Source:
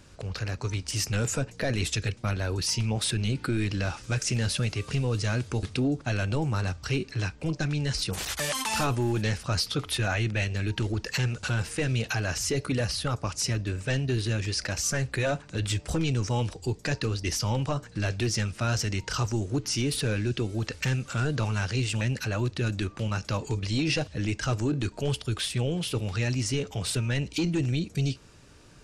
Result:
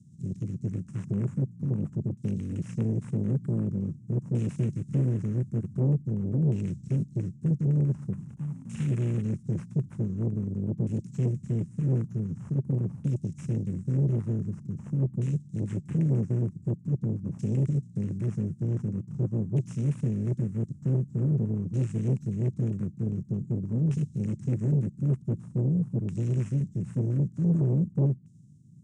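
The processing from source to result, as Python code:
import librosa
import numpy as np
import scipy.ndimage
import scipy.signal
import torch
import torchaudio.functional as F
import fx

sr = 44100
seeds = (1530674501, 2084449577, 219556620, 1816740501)

y = fx.spec_flatten(x, sr, power=0.42)
y = scipy.signal.sosfilt(scipy.signal.cheby2(4, 70, [540.0, 2500.0], 'bandstop', fs=sr, output='sos'), y)
y = fx.low_shelf_res(y, sr, hz=560.0, db=12.5, q=1.5)
y = 10.0 ** (-21.5 / 20.0) * np.tanh(y / 10.0 ** (-21.5 / 20.0))
y = fx.filter_lfo_lowpass(y, sr, shape='saw_down', hz=0.46, low_hz=860.0, high_hz=2800.0, q=1.4)
y = fx.cabinet(y, sr, low_hz=150.0, low_slope=24, high_hz=8800.0, hz=(290.0, 730.0, 2700.0, 4600.0), db=(-4, -5, 5, -10))
y = y * librosa.db_to_amplitude(7.0)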